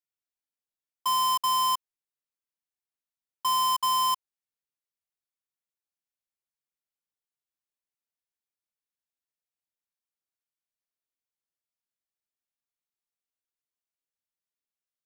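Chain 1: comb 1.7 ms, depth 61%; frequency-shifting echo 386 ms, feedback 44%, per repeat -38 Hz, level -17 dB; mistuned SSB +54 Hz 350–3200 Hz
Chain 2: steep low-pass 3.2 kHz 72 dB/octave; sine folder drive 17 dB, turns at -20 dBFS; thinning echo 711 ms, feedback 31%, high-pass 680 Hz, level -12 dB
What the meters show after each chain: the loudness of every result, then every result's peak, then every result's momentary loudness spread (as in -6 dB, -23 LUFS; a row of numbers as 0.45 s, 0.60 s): -25.5 LUFS, -23.5 LUFS; -17.5 dBFS, -19.5 dBFS; 17 LU, 23 LU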